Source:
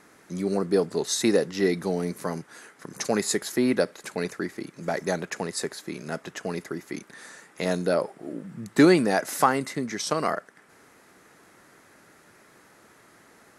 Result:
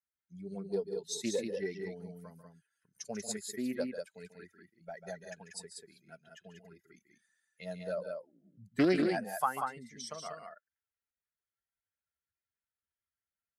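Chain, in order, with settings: per-bin expansion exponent 2; loudspeakers at several distances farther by 49 m -11 dB, 65 m -5 dB; Doppler distortion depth 0.21 ms; gain -8.5 dB

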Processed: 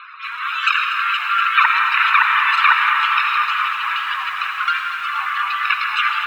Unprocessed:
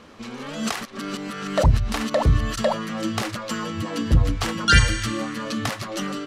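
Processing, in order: minimum comb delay 0.76 ms; inverse Chebyshev high-pass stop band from 210 Hz, stop band 80 dB; reverb removal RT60 1.3 s; dynamic EQ 2400 Hz, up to +5 dB, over -44 dBFS, Q 1; 3.21–5.7 compressor 10:1, threshold -36 dBFS, peak gain reduction 23.5 dB; loudest bins only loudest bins 64; air absorption 500 m; reverb RT60 3.3 s, pre-delay 45 ms, DRR 2.5 dB; maximiser +24 dB; lo-fi delay 0.238 s, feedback 80%, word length 7-bit, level -11 dB; gain -1.5 dB

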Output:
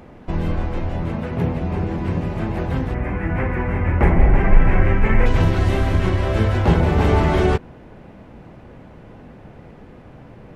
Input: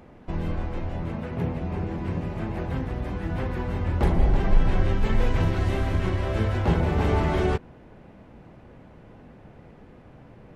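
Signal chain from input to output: 2.94–5.26 resonant high shelf 2900 Hz -9.5 dB, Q 3; gain +6.5 dB

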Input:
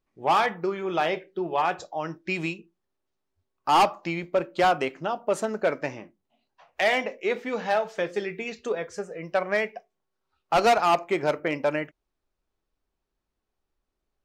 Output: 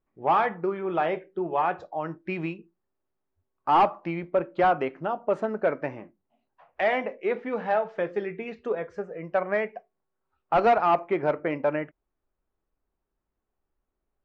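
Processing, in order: LPF 1800 Hz 12 dB/oct

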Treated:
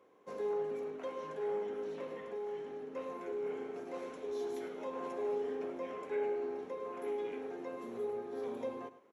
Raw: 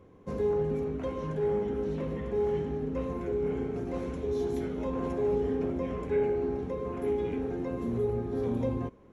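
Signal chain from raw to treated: 2.2–2.95 compressor, threshold -30 dBFS, peak gain reduction 5.5 dB; HPF 490 Hz 12 dB/oct; echo 0.106 s -14.5 dB; gain -3.5 dB

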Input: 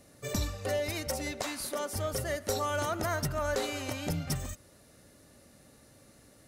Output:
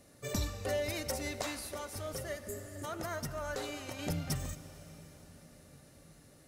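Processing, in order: 2.46–2.82 spectral repair 420–6500 Hz before; 1.59–3.99 flange 1.2 Hz, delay 4.2 ms, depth 3 ms, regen +61%; reverb RT60 5.6 s, pre-delay 38 ms, DRR 13 dB; gain -2.5 dB

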